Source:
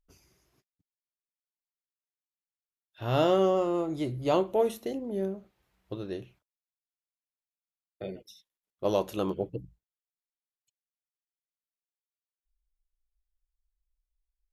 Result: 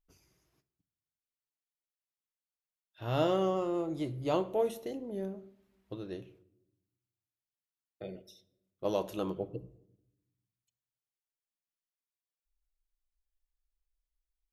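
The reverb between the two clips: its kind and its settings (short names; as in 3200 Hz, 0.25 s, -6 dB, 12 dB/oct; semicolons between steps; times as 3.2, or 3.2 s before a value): shoebox room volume 2500 m³, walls furnished, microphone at 0.59 m; gain -5 dB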